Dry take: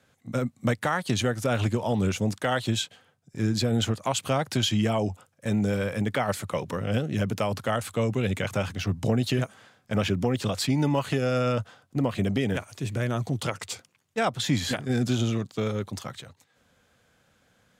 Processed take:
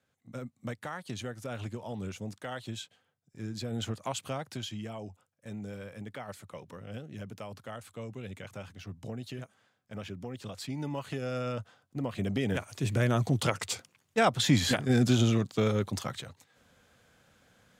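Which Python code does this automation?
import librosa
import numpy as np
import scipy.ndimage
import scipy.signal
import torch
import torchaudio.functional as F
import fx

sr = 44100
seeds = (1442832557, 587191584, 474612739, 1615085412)

y = fx.gain(x, sr, db=fx.line((3.53, -13.0), (4.02, -7.0), (4.81, -15.5), (10.22, -15.5), (11.31, -9.0), (11.98, -9.0), (12.91, 1.0)))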